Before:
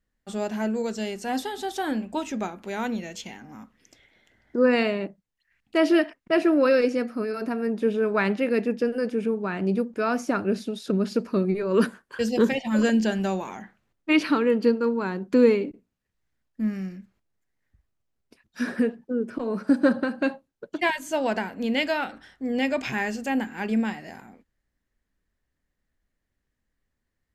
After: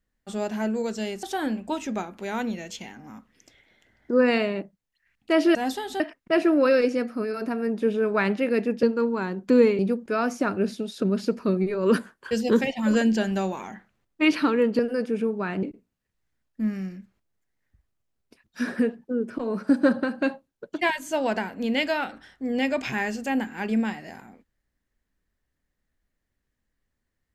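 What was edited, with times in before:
0:01.23–0:01.68: move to 0:06.00
0:08.83–0:09.67: swap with 0:14.67–0:15.63

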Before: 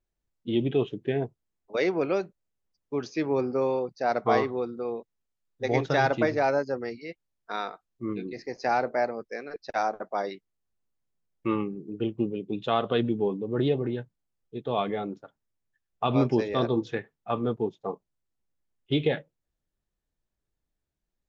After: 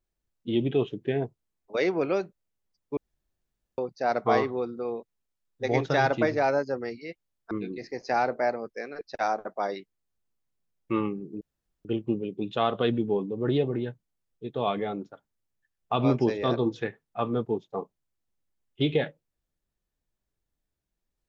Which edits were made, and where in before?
0:02.97–0:03.78: fill with room tone
0:07.51–0:08.06: remove
0:11.96: splice in room tone 0.44 s

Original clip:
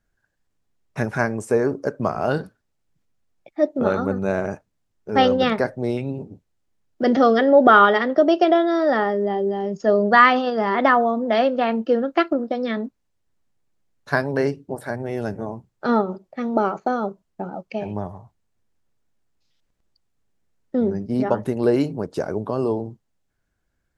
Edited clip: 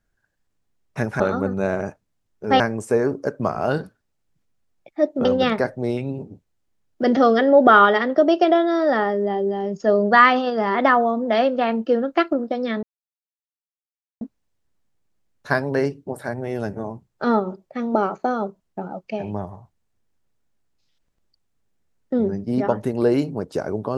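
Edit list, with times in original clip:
0:03.85–0:05.25: move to 0:01.20
0:12.83: splice in silence 1.38 s

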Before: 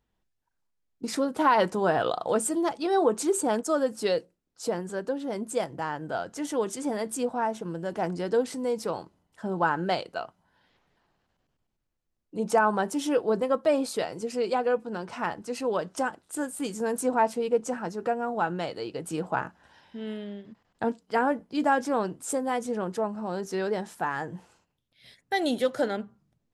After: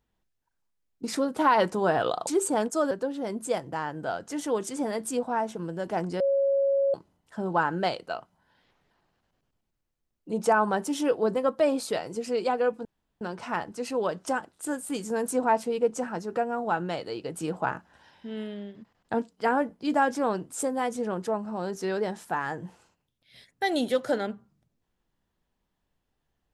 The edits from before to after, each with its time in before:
0:02.27–0:03.20: remove
0:03.84–0:04.97: remove
0:08.26–0:09.00: beep over 552 Hz −20.5 dBFS
0:14.91: splice in room tone 0.36 s

